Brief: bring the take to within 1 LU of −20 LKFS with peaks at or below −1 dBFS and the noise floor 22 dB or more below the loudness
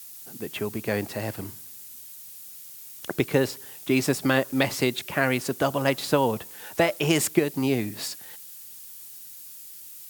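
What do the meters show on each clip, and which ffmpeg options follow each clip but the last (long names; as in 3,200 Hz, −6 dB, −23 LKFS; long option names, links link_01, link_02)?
background noise floor −44 dBFS; target noise floor −48 dBFS; integrated loudness −26.0 LKFS; sample peak −5.5 dBFS; target loudness −20.0 LKFS
→ -af "afftdn=noise_reduction=6:noise_floor=-44"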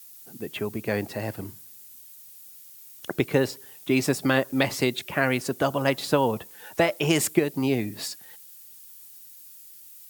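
background noise floor −48 dBFS; integrated loudness −26.0 LKFS; sample peak −5.5 dBFS; target loudness −20.0 LKFS
→ -af "volume=6dB,alimiter=limit=-1dB:level=0:latency=1"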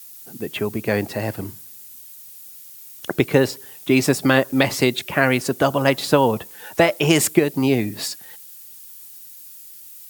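integrated loudness −20.0 LKFS; sample peak −1.0 dBFS; background noise floor −42 dBFS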